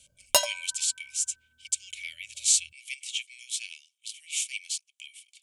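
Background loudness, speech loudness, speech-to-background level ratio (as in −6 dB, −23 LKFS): −25.0 LKFS, −30.0 LKFS, −5.0 dB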